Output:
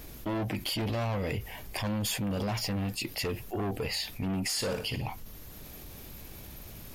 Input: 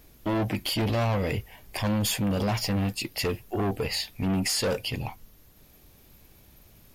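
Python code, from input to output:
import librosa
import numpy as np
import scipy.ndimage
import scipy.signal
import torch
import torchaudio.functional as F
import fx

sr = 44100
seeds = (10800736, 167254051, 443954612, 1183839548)

y = fx.room_flutter(x, sr, wall_m=9.8, rt60_s=0.34, at=(4.56, 5.06), fade=0.02)
y = fx.env_flatten(y, sr, amount_pct=50)
y = y * 10.0 ** (-6.0 / 20.0)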